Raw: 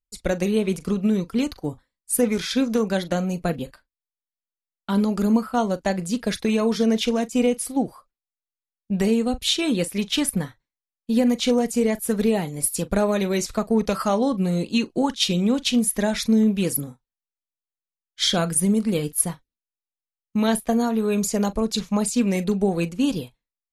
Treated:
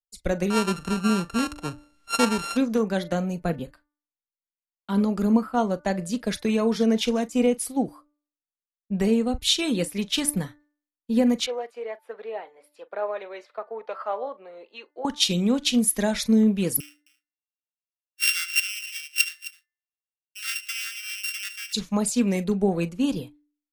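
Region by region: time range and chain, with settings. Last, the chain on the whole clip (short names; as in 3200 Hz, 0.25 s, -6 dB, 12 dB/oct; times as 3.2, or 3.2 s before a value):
0.5–2.57 sample sorter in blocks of 32 samples + LPF 11000 Hz 24 dB/oct + upward compressor, threshold -26 dBFS
11.46–15.05 HPF 500 Hz 24 dB/oct + air absorption 400 m
16.8–21.73 sample sorter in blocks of 16 samples + steep high-pass 1300 Hz 96 dB/oct + tapped delay 74/263 ms -19/-13 dB
whole clip: de-hum 295.2 Hz, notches 7; three-band expander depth 40%; gain -2 dB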